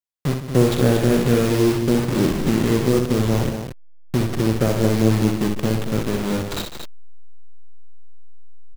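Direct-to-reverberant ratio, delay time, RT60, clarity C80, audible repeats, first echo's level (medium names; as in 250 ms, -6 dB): no reverb, 63 ms, no reverb, no reverb, 3, -6.0 dB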